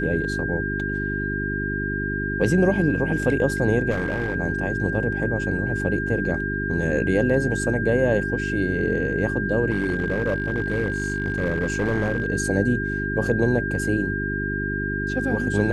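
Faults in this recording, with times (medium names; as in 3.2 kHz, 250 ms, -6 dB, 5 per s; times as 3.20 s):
hum 50 Hz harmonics 8 -28 dBFS
whine 1.6 kHz -27 dBFS
3.90–4.36 s: clipped -20 dBFS
9.70–12.28 s: clipped -17.5 dBFS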